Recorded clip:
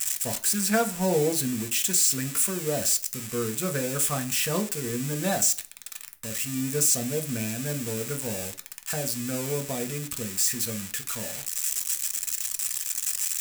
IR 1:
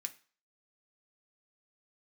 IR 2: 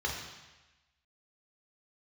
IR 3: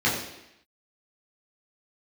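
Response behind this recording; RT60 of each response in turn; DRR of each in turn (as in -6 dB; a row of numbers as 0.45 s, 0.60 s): 1; 0.40 s, 1.1 s, 0.85 s; 5.5 dB, -2.5 dB, -7.5 dB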